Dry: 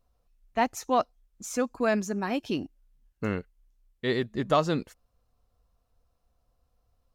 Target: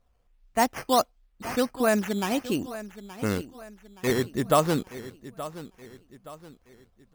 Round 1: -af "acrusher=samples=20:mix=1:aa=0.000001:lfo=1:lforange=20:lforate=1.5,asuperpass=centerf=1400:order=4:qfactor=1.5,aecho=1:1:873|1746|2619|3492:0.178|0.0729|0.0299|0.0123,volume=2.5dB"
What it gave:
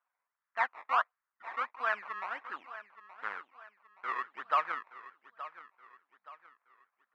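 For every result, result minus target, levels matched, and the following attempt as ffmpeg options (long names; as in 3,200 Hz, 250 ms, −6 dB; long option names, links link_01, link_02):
sample-and-hold swept by an LFO: distortion +8 dB; 1,000 Hz band +4.0 dB
-af "acrusher=samples=8:mix=1:aa=0.000001:lfo=1:lforange=8:lforate=1.5,asuperpass=centerf=1400:order=4:qfactor=1.5,aecho=1:1:873|1746|2619|3492:0.178|0.0729|0.0299|0.0123,volume=2.5dB"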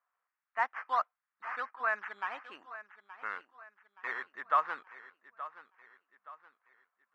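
1,000 Hz band +4.5 dB
-af "acrusher=samples=8:mix=1:aa=0.000001:lfo=1:lforange=8:lforate=1.5,aecho=1:1:873|1746|2619|3492:0.178|0.0729|0.0299|0.0123,volume=2.5dB"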